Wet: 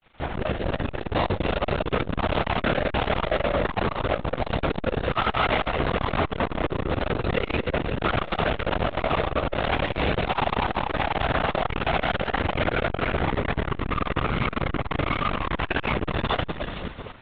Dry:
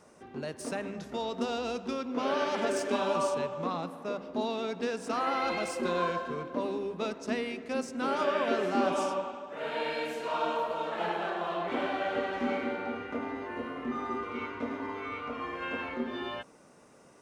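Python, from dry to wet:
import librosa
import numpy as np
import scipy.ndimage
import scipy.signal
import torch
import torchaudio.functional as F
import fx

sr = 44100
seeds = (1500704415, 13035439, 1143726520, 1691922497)

y = fx.echo_split(x, sr, split_hz=390.0, low_ms=419, high_ms=231, feedback_pct=52, wet_db=-11.5)
y = fx.fuzz(y, sr, gain_db=47.0, gate_db=-50.0)
y = fx.lpc_vocoder(y, sr, seeds[0], excitation='whisper', order=10)
y = fx.transformer_sat(y, sr, knee_hz=330.0)
y = F.gain(torch.from_numpy(y), -5.5).numpy()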